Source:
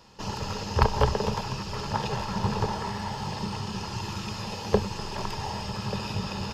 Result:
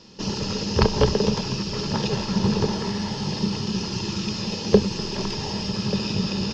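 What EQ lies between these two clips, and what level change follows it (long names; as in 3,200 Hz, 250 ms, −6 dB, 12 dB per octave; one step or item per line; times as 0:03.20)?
drawn EQ curve 110 Hz 0 dB, 170 Hz +9 dB, 360 Hz +9 dB, 830 Hz −4 dB, 1,500 Hz −1 dB, 3,200 Hz +5 dB, 5,800 Hz +9 dB, 11,000 Hz −17 dB
+1.0 dB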